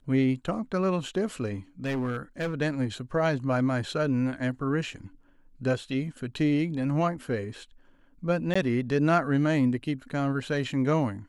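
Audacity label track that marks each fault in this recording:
1.850000	2.540000	clipping −25.5 dBFS
8.540000	8.550000	drop-out 15 ms

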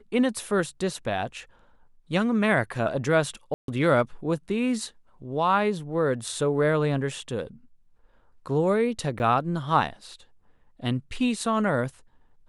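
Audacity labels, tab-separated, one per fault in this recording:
3.540000	3.680000	drop-out 142 ms
9.190000	9.200000	drop-out 9.5 ms

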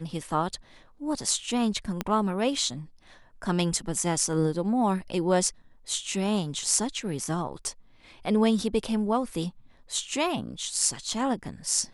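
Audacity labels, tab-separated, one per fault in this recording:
2.010000	2.010000	click −13 dBFS

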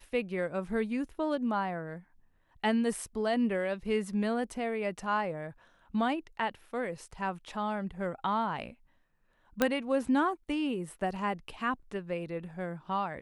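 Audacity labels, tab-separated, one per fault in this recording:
9.620000	9.620000	click −11 dBFS

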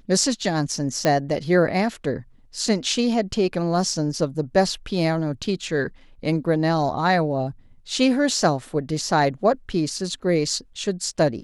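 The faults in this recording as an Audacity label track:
1.050000	1.050000	click −7 dBFS

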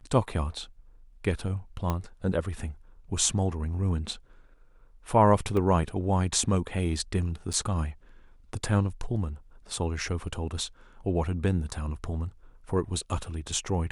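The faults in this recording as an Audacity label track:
1.900000	1.900000	click −15 dBFS
5.570000	5.570000	drop-out 2.5 ms
7.530000	7.540000	drop-out 6.1 ms

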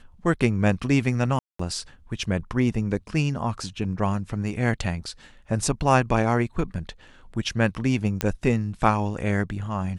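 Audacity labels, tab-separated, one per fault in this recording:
1.390000	1.590000	drop-out 204 ms
8.210000	8.210000	click −8 dBFS

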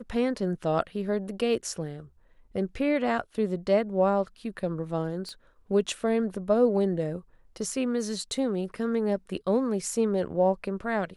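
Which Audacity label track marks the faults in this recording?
5.290000	5.290000	click −27 dBFS

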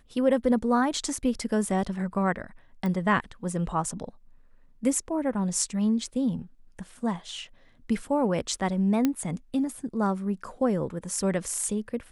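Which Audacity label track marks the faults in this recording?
2.860000	2.860000	click −20 dBFS
9.050000	9.050000	click −11 dBFS

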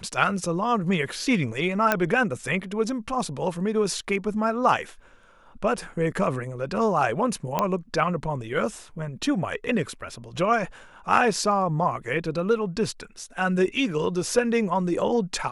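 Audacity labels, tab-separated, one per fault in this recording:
1.920000	1.920000	click −6 dBFS
7.590000	7.590000	click −9 dBFS

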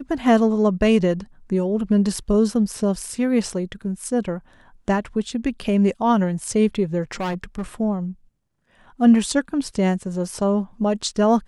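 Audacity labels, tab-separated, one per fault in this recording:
7.150000	7.620000	clipping −22 dBFS

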